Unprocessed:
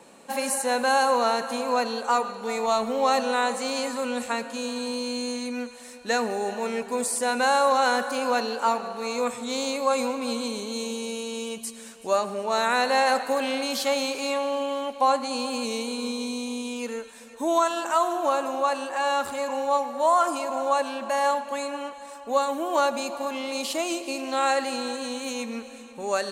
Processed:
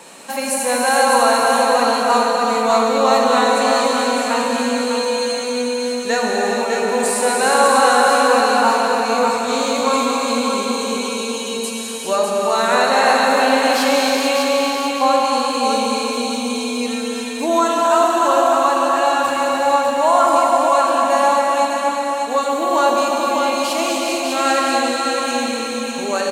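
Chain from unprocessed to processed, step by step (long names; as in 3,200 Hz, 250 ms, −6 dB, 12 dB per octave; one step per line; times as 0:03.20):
repeating echo 600 ms, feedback 31%, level −4.5 dB
reverb whose tail is shaped and stops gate 500 ms flat, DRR −2 dB
one half of a high-frequency compander encoder only
level +4 dB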